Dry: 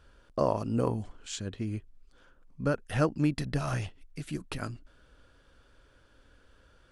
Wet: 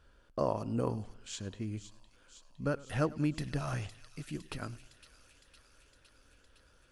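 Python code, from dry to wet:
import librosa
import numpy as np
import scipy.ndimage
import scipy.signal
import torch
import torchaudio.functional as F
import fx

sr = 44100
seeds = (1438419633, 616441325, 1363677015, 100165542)

y = fx.echo_wet_highpass(x, sr, ms=510, feedback_pct=72, hz=3000.0, wet_db=-10.5)
y = fx.echo_warbled(y, sr, ms=103, feedback_pct=47, rate_hz=2.8, cents=99, wet_db=-21.0)
y = y * 10.0 ** (-4.5 / 20.0)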